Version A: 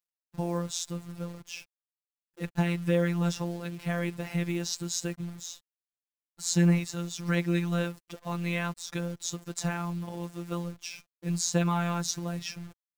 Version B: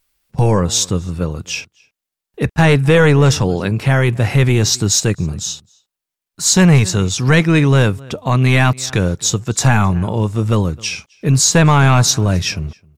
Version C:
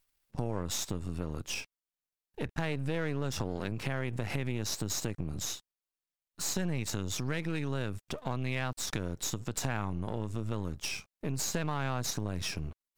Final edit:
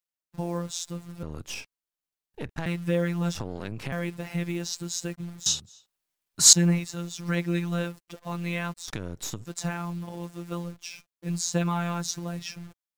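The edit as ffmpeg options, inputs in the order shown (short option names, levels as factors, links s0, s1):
-filter_complex "[2:a]asplit=3[s0][s1][s2];[0:a]asplit=5[s3][s4][s5][s6][s7];[s3]atrim=end=1.232[s8];[s0]atrim=start=1.228:end=2.662[s9];[s4]atrim=start=2.658:end=3.352[s10];[s1]atrim=start=3.348:end=3.922[s11];[s5]atrim=start=3.918:end=5.462[s12];[1:a]atrim=start=5.458:end=6.532[s13];[s6]atrim=start=6.528:end=8.882[s14];[s2]atrim=start=8.878:end=9.462[s15];[s7]atrim=start=9.458[s16];[s8][s9]acrossfade=d=0.004:c1=hsin:c2=hsin[s17];[s17][s10]acrossfade=d=0.004:c1=hsin:c2=hsin[s18];[s18][s11]acrossfade=d=0.004:c1=hsin:c2=hsin[s19];[s19][s12]acrossfade=d=0.004:c1=hsin:c2=hsin[s20];[s20][s13]acrossfade=d=0.004:c1=hsin:c2=hsin[s21];[s21][s14]acrossfade=d=0.004:c1=hsin:c2=hsin[s22];[s22][s15]acrossfade=d=0.004:c1=hsin:c2=hsin[s23];[s23][s16]acrossfade=d=0.004:c1=hsin:c2=hsin"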